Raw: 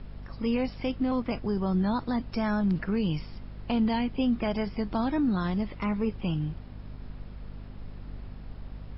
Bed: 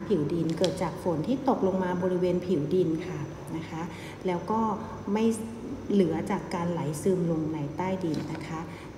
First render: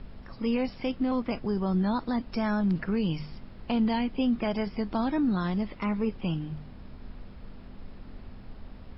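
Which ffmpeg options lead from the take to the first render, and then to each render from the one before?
-af "bandreject=f=50:t=h:w=4,bandreject=f=100:t=h:w=4,bandreject=f=150:t=h:w=4"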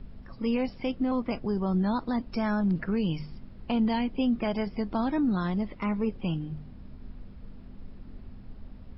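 -af "afftdn=nr=7:nf=-46"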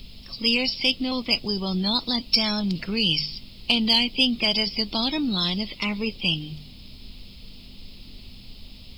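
-af "aexciter=amount=8.6:drive=9.9:freq=2.6k"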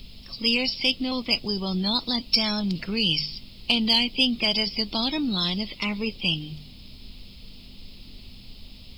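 -af "volume=-1dB"

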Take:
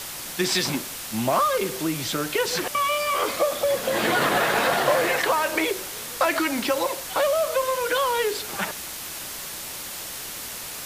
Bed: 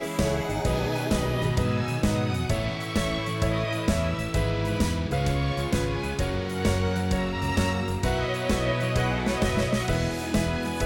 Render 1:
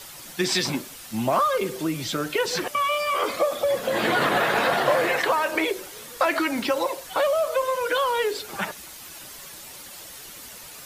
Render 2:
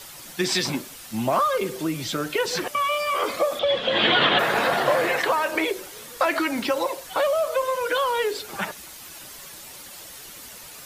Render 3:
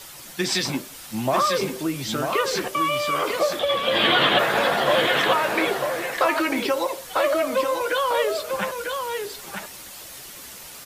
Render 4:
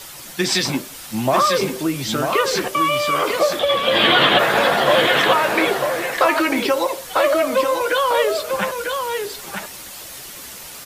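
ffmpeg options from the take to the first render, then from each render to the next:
-af "afftdn=nr=9:nf=-35"
-filter_complex "[0:a]asettb=1/sr,asplit=3[a][b][c];[a]atrim=end=3.594[d];[b]atrim=start=3.59:end=4.39,asetpts=PTS-STARTPTS,afade=t=in:d=0.004:c=qsin,afade=t=out:st=0.796:d=0.004:c=qsin,lowpass=f=3.3k:t=q:w=5[e];[c]atrim=start=4.386[f];[d][e]acrossfade=d=0.004:c1=hsin:c2=qsin[g];[g][f]acrossfade=d=0.004:c1=qsin:c2=hsin"
-filter_complex "[0:a]asplit=2[a][b];[b]adelay=15,volume=-12.5dB[c];[a][c]amix=inputs=2:normalize=0,asplit=2[d][e];[e]aecho=0:1:946:0.531[f];[d][f]amix=inputs=2:normalize=0"
-af "volume=4.5dB,alimiter=limit=-3dB:level=0:latency=1"

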